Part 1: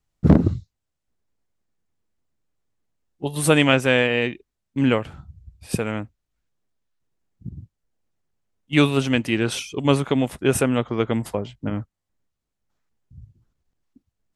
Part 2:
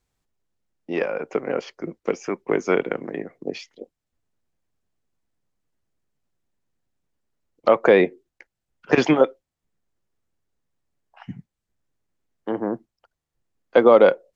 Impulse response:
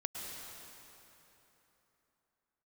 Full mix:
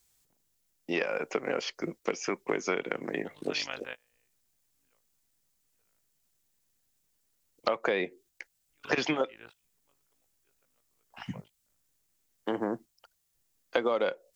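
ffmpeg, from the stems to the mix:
-filter_complex "[0:a]acrossover=split=600 4100:gain=0.141 1 0.0708[link_01][link_02][link_03];[link_01][link_02][link_03]amix=inputs=3:normalize=0,tremolo=f=52:d=0.889,volume=-14.5dB[link_04];[1:a]crystalizer=i=6.5:c=0,acrossover=split=6000[link_05][link_06];[link_06]acompressor=threshold=-56dB:ratio=4:attack=1:release=60[link_07];[link_05][link_07]amix=inputs=2:normalize=0,volume=-3.5dB,asplit=2[link_08][link_09];[link_09]apad=whole_len=632855[link_10];[link_04][link_10]sidechaingate=range=-33dB:threshold=-50dB:ratio=16:detection=peak[link_11];[link_11][link_08]amix=inputs=2:normalize=0,acompressor=threshold=-26dB:ratio=5"

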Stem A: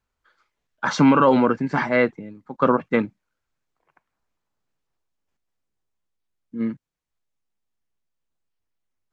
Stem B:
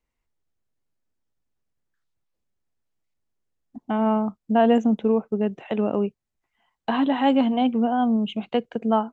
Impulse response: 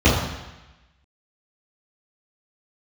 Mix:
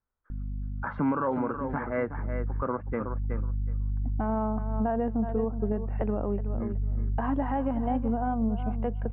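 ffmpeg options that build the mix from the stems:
-filter_complex "[0:a]volume=-7.5dB,asplit=3[link_01][link_02][link_03];[link_02]volume=-9dB[link_04];[1:a]aeval=exprs='val(0)+0.02*(sin(2*PI*50*n/s)+sin(2*PI*2*50*n/s)/2+sin(2*PI*3*50*n/s)/3+sin(2*PI*4*50*n/s)/4+sin(2*PI*5*50*n/s)/5)':channel_layout=same,adelay=300,volume=0dB,asplit=2[link_05][link_06];[link_06]volume=-13dB[link_07];[link_03]apad=whole_len=415845[link_08];[link_05][link_08]sidechaincompress=threshold=-36dB:ratio=8:attack=16:release=130[link_09];[link_04][link_07]amix=inputs=2:normalize=0,aecho=0:1:371|742|1113:1|0.16|0.0256[link_10];[link_01][link_09][link_10]amix=inputs=3:normalize=0,lowpass=frequency=1700:width=0.5412,lowpass=frequency=1700:width=1.3066,asubboost=boost=4:cutoff=100,alimiter=limit=-18.5dB:level=0:latency=1:release=351"

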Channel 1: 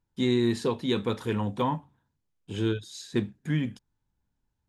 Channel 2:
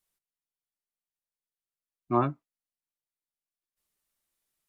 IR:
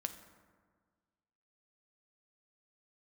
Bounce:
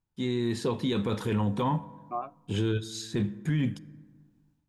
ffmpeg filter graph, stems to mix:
-filter_complex "[0:a]equalizer=frequency=140:width_type=o:width=0.97:gain=3.5,volume=-8dB,asplit=2[link_01][link_02];[link_02]volume=-9.5dB[link_03];[1:a]acompressor=threshold=-31dB:ratio=3,asplit=3[link_04][link_05][link_06];[link_04]bandpass=frequency=730:width_type=q:width=8,volume=0dB[link_07];[link_05]bandpass=frequency=1090:width_type=q:width=8,volume=-6dB[link_08];[link_06]bandpass=frequency=2440:width_type=q:width=8,volume=-9dB[link_09];[link_07][link_08][link_09]amix=inputs=3:normalize=0,volume=-2.5dB,asplit=2[link_10][link_11];[link_11]volume=-21dB[link_12];[2:a]atrim=start_sample=2205[link_13];[link_03][link_12]amix=inputs=2:normalize=0[link_14];[link_14][link_13]afir=irnorm=-1:irlink=0[link_15];[link_01][link_10][link_15]amix=inputs=3:normalize=0,dynaudnorm=framelen=410:gausssize=3:maxgain=9.5dB,alimiter=limit=-19.5dB:level=0:latency=1:release=15"

